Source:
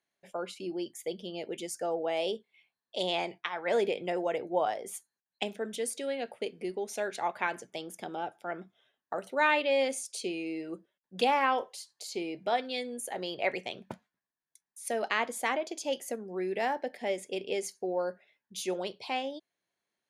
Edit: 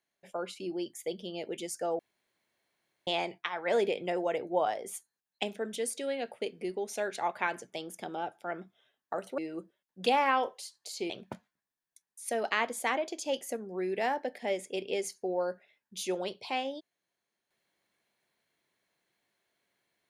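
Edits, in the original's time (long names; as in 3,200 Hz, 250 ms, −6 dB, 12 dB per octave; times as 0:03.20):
0:01.99–0:03.07: fill with room tone
0:09.38–0:10.53: remove
0:12.25–0:13.69: remove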